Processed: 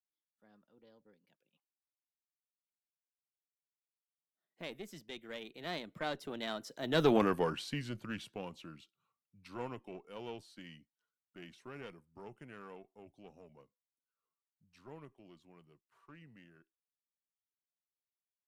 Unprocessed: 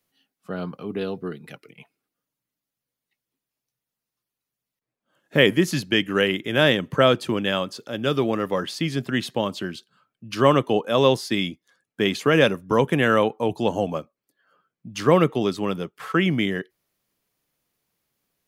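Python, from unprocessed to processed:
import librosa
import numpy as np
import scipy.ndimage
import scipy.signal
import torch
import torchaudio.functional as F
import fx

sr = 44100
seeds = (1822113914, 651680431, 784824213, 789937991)

y = fx.diode_clip(x, sr, knee_db=-16.5)
y = fx.doppler_pass(y, sr, speed_mps=48, closest_m=8.7, pass_at_s=7.15)
y = F.gain(torch.from_numpy(y), -2.0).numpy()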